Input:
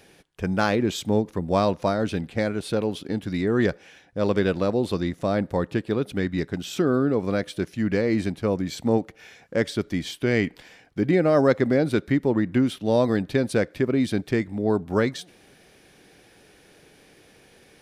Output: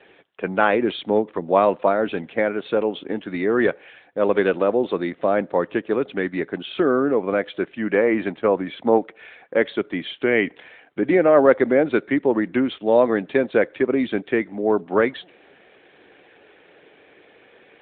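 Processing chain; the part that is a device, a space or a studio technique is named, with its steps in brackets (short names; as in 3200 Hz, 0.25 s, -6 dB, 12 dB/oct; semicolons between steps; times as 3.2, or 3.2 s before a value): 7.87–8.99 dynamic EQ 1000 Hz, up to +4 dB, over -36 dBFS, Q 0.88; telephone (BPF 350–3600 Hz; gain +6.5 dB; AMR-NB 12.2 kbps 8000 Hz)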